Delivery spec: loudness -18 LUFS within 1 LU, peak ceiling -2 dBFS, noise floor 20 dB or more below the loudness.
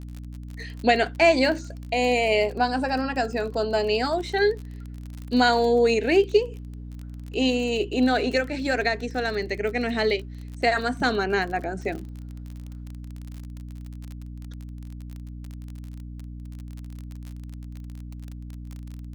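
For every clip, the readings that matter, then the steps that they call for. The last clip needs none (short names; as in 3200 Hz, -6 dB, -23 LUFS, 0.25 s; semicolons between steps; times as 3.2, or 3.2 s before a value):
ticks 35/s; hum 60 Hz; harmonics up to 300 Hz; hum level -35 dBFS; loudness -23.5 LUFS; peak -6.0 dBFS; loudness target -18.0 LUFS
-> de-click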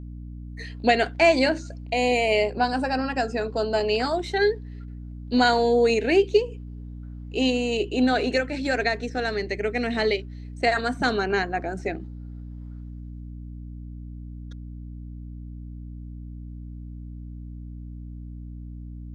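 ticks 0/s; hum 60 Hz; harmonics up to 300 Hz; hum level -35 dBFS
-> notches 60/120/180/240/300 Hz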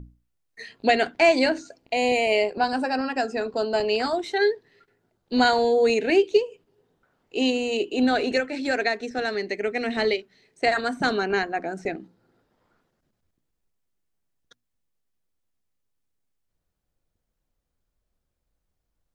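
hum none; loudness -23.5 LUFS; peak -6.5 dBFS; loudness target -18.0 LUFS
-> gain +5.5 dB; limiter -2 dBFS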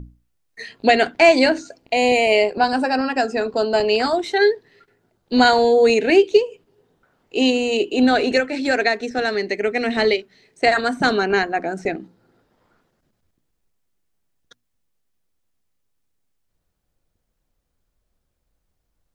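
loudness -18.0 LUFS; peak -2.0 dBFS; noise floor -73 dBFS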